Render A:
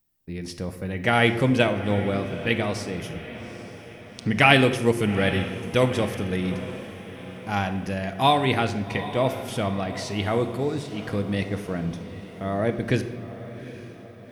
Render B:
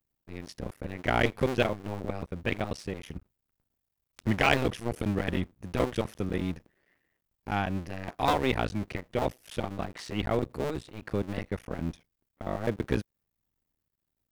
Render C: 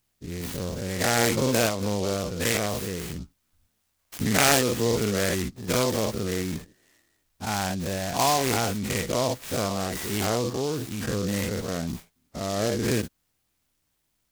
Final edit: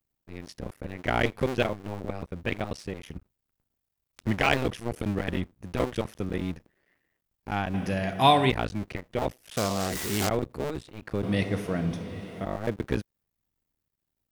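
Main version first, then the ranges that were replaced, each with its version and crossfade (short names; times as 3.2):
B
7.74–8.5 from A
9.57–10.29 from C
11.23–12.45 from A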